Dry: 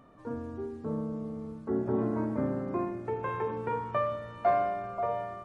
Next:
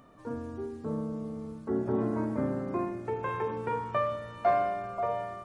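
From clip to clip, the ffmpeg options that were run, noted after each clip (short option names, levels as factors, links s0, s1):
-af "highshelf=f=3500:g=7.5"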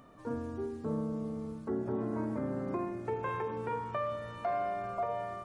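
-af "alimiter=level_in=1.12:limit=0.0631:level=0:latency=1:release=319,volume=0.891"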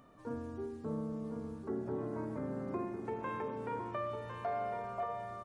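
-af "aecho=1:1:1054:0.376,volume=0.631"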